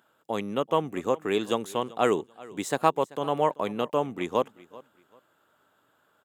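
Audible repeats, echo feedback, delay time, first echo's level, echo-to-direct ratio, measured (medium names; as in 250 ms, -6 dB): 2, 26%, 386 ms, -21.0 dB, -20.5 dB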